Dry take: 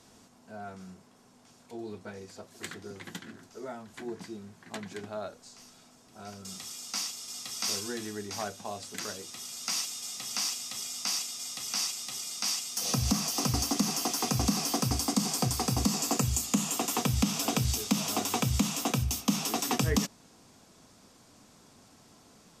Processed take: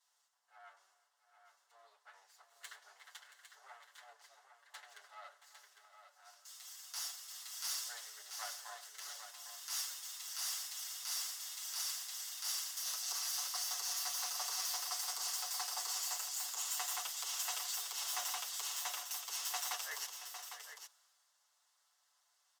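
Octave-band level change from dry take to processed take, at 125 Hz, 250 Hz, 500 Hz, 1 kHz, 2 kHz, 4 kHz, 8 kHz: under -40 dB, under -40 dB, -22.0 dB, -11.0 dB, -7.5 dB, -7.0 dB, -7.0 dB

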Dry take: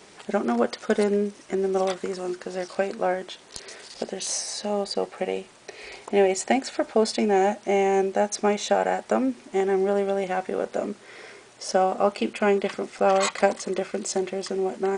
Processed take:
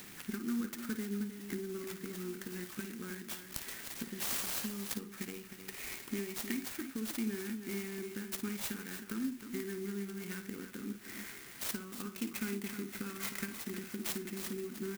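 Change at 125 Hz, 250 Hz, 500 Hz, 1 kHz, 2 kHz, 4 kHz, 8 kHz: no reading, -10.0 dB, -22.0 dB, -26.0 dB, -11.5 dB, -10.5 dB, -9.5 dB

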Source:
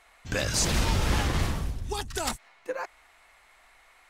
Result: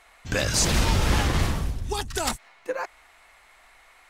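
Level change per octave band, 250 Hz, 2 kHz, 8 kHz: +3.5 dB, +3.5 dB, +3.5 dB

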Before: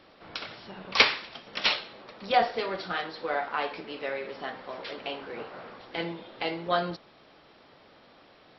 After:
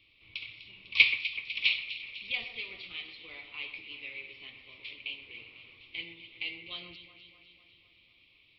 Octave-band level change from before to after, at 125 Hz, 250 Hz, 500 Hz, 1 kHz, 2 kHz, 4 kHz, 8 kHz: -14.5 dB, -18.0 dB, -25.0 dB, -28.0 dB, 0.0 dB, -2.5 dB, no reading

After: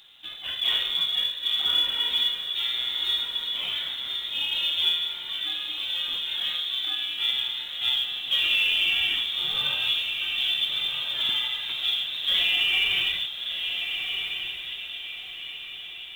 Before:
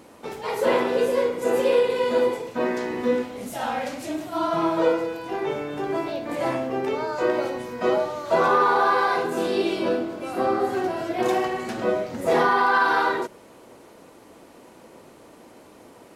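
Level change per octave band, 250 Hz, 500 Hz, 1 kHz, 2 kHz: under -25 dB, -30.0 dB, -21.5 dB, -1.0 dB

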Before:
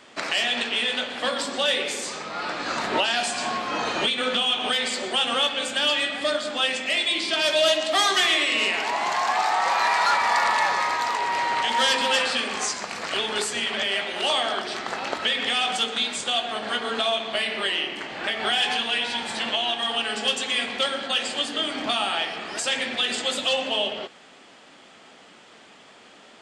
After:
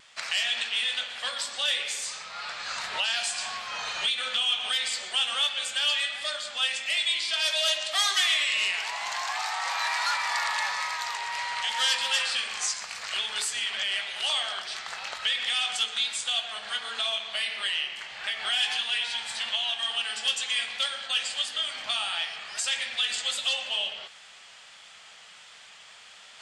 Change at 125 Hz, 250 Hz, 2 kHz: under -15 dB, under -25 dB, -4.5 dB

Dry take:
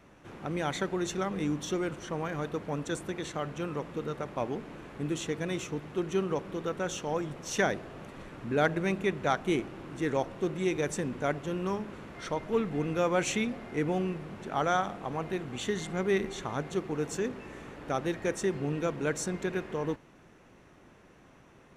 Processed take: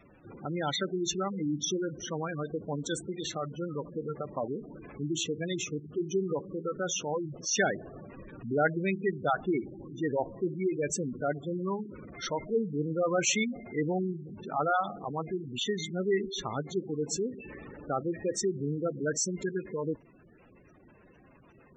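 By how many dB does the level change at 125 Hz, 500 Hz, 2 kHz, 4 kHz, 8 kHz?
-1.0 dB, -0.5 dB, -1.0 dB, +4.0 dB, +6.0 dB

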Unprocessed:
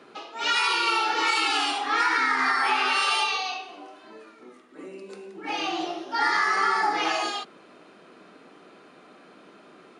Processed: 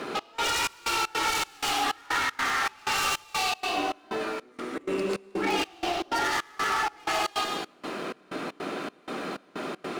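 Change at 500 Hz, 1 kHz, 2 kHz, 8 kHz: +3.5 dB, -3.5 dB, -4.5 dB, +4.0 dB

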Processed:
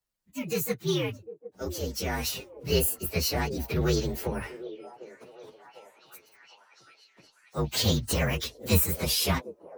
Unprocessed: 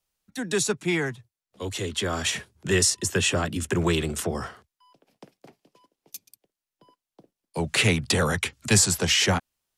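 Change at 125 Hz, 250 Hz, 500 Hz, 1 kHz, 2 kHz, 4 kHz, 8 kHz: -2.0 dB, -3.5 dB, -2.5 dB, -4.5 dB, -9.0 dB, -5.0 dB, -8.5 dB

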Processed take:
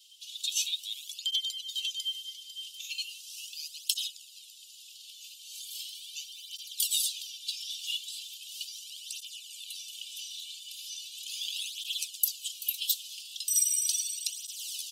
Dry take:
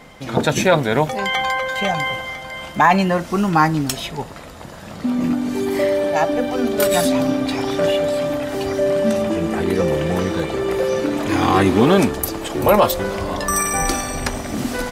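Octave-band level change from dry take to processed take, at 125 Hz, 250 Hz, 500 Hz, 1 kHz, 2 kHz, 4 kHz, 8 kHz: under -40 dB, under -40 dB, under -40 dB, under -40 dB, -24.5 dB, -3.0 dB, -3.5 dB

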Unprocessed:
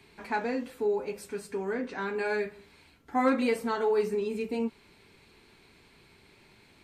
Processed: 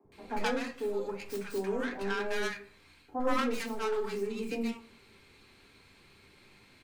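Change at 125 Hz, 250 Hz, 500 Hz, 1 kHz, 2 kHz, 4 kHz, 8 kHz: no reading, -4.0 dB, -4.5 dB, -3.5 dB, -1.5 dB, +3.5 dB, +2.0 dB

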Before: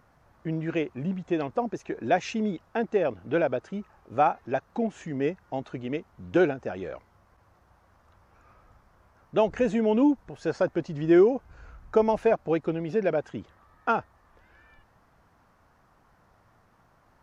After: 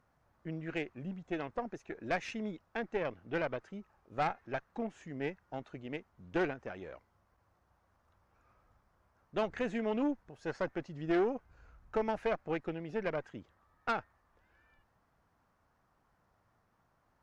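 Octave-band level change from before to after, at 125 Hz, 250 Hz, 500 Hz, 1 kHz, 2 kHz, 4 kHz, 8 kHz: -10.0 dB, -11.0 dB, -11.0 dB, -9.5 dB, -5.0 dB, -5.5 dB, no reading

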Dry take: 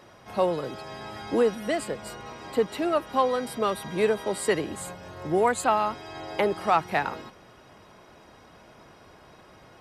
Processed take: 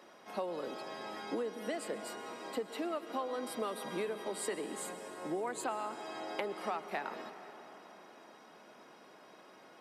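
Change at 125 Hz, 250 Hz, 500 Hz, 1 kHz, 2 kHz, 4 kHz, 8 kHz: -17.0 dB, -11.0 dB, -12.5 dB, -13.0 dB, -11.5 dB, -9.0 dB, -7.5 dB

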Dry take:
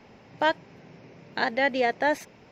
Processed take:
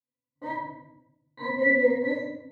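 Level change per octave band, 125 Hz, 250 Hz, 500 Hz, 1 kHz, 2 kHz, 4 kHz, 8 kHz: -1.5 dB, +3.0 dB, +1.5 dB, -8.5 dB, +1.0 dB, -15.5 dB, no reading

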